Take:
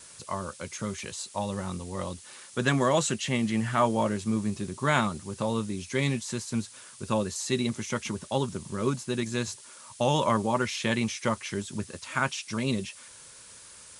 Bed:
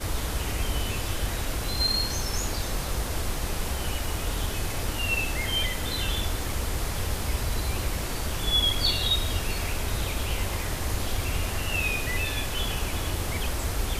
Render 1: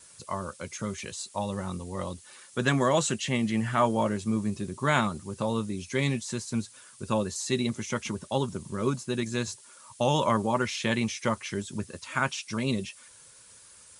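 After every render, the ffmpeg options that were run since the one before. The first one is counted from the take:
-af "afftdn=nr=6:nf=-49"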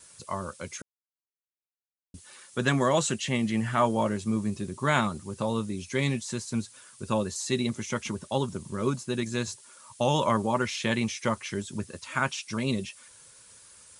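-filter_complex "[0:a]asplit=3[a][b][c];[a]atrim=end=0.82,asetpts=PTS-STARTPTS,afade=t=out:st=0.816:d=0.004:c=hsin[d];[b]atrim=start=0.82:end=2.14,asetpts=PTS-STARTPTS,volume=0[e];[c]atrim=start=2.14,asetpts=PTS-STARTPTS,afade=t=in:d=0.004:c=hsin[f];[d][e][f]concat=n=3:v=0:a=1"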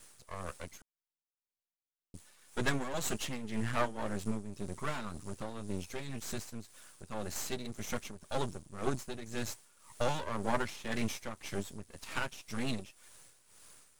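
-af "aeval=exprs='max(val(0),0)':c=same,tremolo=f=1.9:d=0.7"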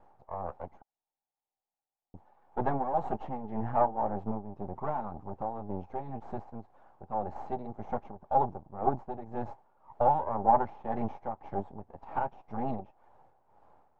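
-af "lowpass=f=810:t=q:w=7.5"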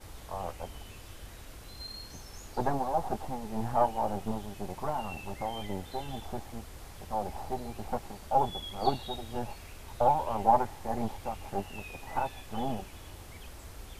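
-filter_complex "[1:a]volume=-18dB[a];[0:a][a]amix=inputs=2:normalize=0"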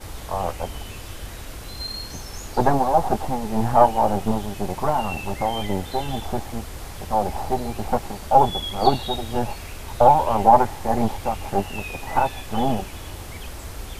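-af "volume=11.5dB,alimiter=limit=-2dB:level=0:latency=1"

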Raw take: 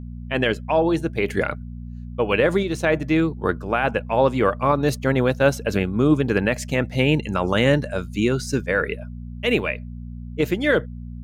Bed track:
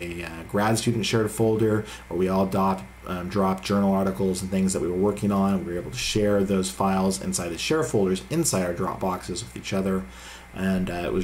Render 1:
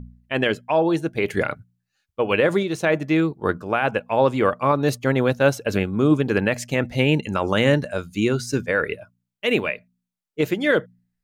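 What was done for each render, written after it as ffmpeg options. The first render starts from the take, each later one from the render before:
-af "bandreject=f=60:t=h:w=4,bandreject=f=120:t=h:w=4,bandreject=f=180:t=h:w=4,bandreject=f=240:t=h:w=4"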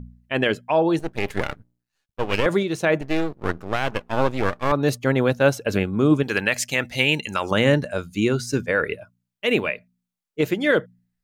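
-filter_complex "[0:a]asettb=1/sr,asplit=3[a][b][c];[a]atrim=end=0.994[d];[b]atrim=start=0.99:end=2.46,asetpts=PTS-STARTPTS,afade=t=in:d=0.004:c=qsin,afade=t=out:st=1.466:d=0.004:c=qsin,aeval=exprs='max(val(0),0)':c=same[e];[c]atrim=start=2.456[f];[d][e]acrossfade=d=0.004:c1=hsin:c2=qsin[g];[g][f]acrossfade=d=0.004:c1=qsin:c2=hsin,asettb=1/sr,asplit=3[h][i][j];[h]atrim=end=3.014[k];[i]atrim=start=3.01:end=4.72,asetpts=PTS-STARTPTS,afade=t=in:d=0.004:c=qsin,afade=t=out:st=1.706:d=0.004:c=qsin,aeval=exprs='max(val(0),0)':c=same[l];[j]atrim=start=4.716[m];[k][l]acrossfade=d=0.004:c1=hsin:c2=qsin[n];[n][m]acrossfade=d=0.004:c1=qsin:c2=hsin,asettb=1/sr,asplit=3[o][p][q];[o]atrim=end=6.234[r];[p]atrim=start=6.23:end=7.51,asetpts=PTS-STARTPTS,afade=t=in:d=0.004:c=qsin,afade=t=out:st=1.276:d=0.004:c=qsin,tiltshelf=f=1.1k:g=-7.5[s];[q]atrim=start=7.506[t];[r][s]acrossfade=d=0.004:c1=hsin:c2=qsin[u];[u][t]acrossfade=d=0.004:c1=qsin:c2=hsin"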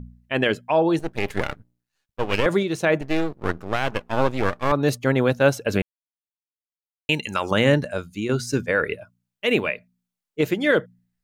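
-filter_complex "[0:a]asplit=4[a][b][c][d];[a]atrim=end=5.82,asetpts=PTS-STARTPTS,afade=t=out:st=5.816:d=0.004:c=hsin[e];[b]atrim=start=5.82:end=7.09,asetpts=PTS-STARTPTS,volume=0[f];[c]atrim=start=7.09:end=8.29,asetpts=PTS-STARTPTS,afade=t=in:d=0.004:c=hsin,afade=t=out:st=0.78:d=0.42:silence=0.375837[g];[d]atrim=start=8.29,asetpts=PTS-STARTPTS,afade=t=in:d=0.004:c=hsin:silence=0.375837[h];[e][f][g][h]concat=n=4:v=0:a=1"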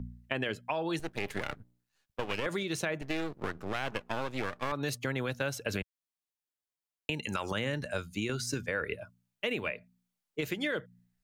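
-filter_complex "[0:a]alimiter=limit=-15dB:level=0:latency=1:release=239,acrossover=split=100|1400[a][b][c];[a]acompressor=threshold=-43dB:ratio=4[d];[b]acompressor=threshold=-34dB:ratio=4[e];[c]acompressor=threshold=-34dB:ratio=4[f];[d][e][f]amix=inputs=3:normalize=0"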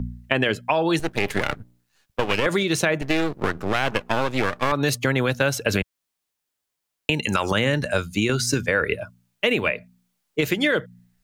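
-af "volume=12dB"

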